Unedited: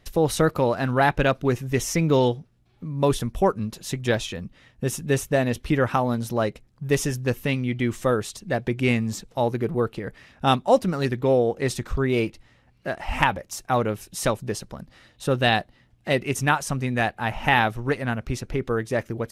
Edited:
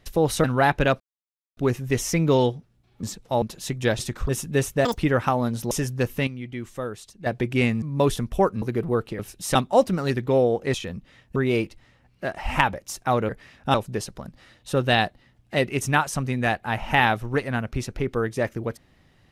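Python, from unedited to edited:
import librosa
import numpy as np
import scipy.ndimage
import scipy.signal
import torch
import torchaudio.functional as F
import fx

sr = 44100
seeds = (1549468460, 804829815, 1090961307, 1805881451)

y = fx.edit(x, sr, fx.cut(start_s=0.44, length_s=0.39),
    fx.insert_silence(at_s=1.39, length_s=0.57),
    fx.swap(start_s=2.85, length_s=0.8, other_s=9.09, other_length_s=0.39),
    fx.swap(start_s=4.22, length_s=0.62, other_s=11.69, other_length_s=0.3),
    fx.speed_span(start_s=5.4, length_s=0.25, speed=1.92),
    fx.cut(start_s=6.38, length_s=0.6),
    fx.clip_gain(start_s=7.54, length_s=0.99, db=-9.0),
    fx.swap(start_s=10.05, length_s=0.45, other_s=13.92, other_length_s=0.36), tone=tone)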